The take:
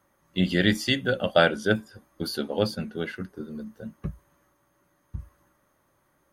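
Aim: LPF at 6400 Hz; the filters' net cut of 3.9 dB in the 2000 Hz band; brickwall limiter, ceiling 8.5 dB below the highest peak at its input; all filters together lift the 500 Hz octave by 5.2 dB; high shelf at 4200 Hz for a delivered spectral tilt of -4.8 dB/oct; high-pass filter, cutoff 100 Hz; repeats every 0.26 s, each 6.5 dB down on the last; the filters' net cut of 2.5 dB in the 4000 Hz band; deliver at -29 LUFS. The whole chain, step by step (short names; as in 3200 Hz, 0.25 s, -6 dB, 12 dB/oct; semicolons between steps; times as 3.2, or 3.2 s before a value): HPF 100 Hz; LPF 6400 Hz; bell 500 Hz +6.5 dB; bell 2000 Hz -6.5 dB; bell 4000 Hz -3.5 dB; high shelf 4200 Hz +6 dB; limiter -12 dBFS; feedback echo 0.26 s, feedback 47%, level -6.5 dB; gain -2.5 dB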